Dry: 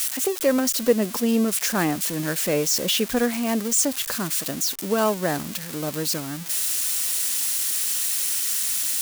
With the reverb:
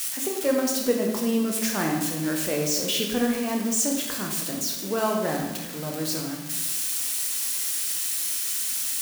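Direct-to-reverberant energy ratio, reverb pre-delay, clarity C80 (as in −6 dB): 0.5 dB, 15 ms, 6.5 dB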